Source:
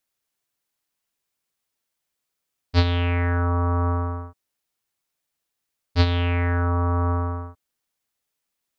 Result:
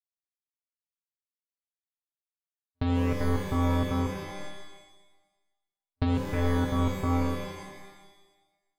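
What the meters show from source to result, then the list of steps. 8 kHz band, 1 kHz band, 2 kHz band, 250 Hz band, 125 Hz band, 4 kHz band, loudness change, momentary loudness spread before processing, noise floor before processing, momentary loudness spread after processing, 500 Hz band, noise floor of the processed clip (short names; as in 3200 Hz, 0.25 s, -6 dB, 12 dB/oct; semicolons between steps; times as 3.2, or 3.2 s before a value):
n/a, -6.0 dB, -8.5 dB, 0.0 dB, -7.5 dB, -9.0 dB, -5.5 dB, 10 LU, -81 dBFS, 16 LU, -3.0 dB, under -85 dBFS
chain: expander -27 dBFS; LPF 1100 Hz 6 dB/oct; step gate "xxxx.xx.." 192 bpm -60 dB; flange 0.94 Hz, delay 6.6 ms, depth 1.8 ms, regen +47%; shimmer reverb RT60 1.1 s, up +12 st, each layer -2 dB, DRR 6 dB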